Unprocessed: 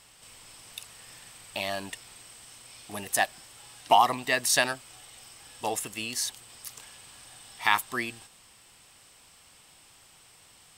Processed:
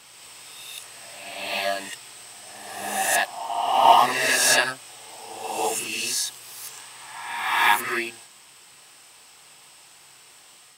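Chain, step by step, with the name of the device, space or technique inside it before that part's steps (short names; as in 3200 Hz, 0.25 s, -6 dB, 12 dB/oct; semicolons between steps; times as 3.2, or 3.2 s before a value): ghost voice (reverse; reverb RT60 1.4 s, pre-delay 7 ms, DRR -6 dB; reverse; HPF 330 Hz 6 dB/oct)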